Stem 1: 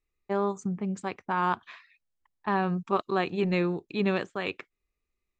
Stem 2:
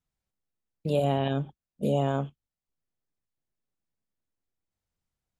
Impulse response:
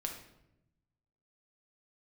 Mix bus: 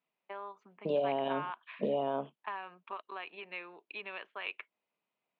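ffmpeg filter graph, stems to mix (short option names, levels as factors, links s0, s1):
-filter_complex "[0:a]acompressor=threshold=0.0316:ratio=6,bandpass=f=2200:t=q:w=1.7:csg=0,volume=1[s0];[1:a]acompressor=threshold=0.0282:ratio=10,volume=1.06[s1];[s0][s1]amix=inputs=2:normalize=0,highpass=f=200:w=0.5412,highpass=f=200:w=1.3066,equalizer=f=430:t=q:w=4:g=4,equalizer=f=630:t=q:w=4:g=8,equalizer=f=980:t=q:w=4:g=8,equalizer=f=1900:t=q:w=4:g=-3,equalizer=f=2900:t=q:w=4:g=4,lowpass=f=3700:w=0.5412,lowpass=f=3700:w=1.3066"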